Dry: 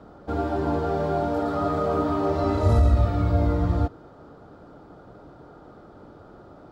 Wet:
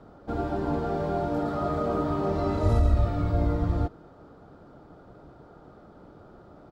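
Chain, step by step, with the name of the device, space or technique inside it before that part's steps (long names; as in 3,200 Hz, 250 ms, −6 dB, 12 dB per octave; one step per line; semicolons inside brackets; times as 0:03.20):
octave pedal (pitch-shifted copies added −12 semitones −6 dB)
level −4 dB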